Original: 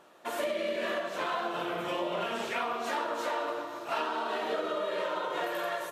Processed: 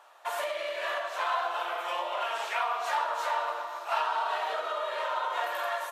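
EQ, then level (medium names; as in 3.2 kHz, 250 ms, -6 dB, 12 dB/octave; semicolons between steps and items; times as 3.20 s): ladder high-pass 650 Hz, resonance 35%; +8.5 dB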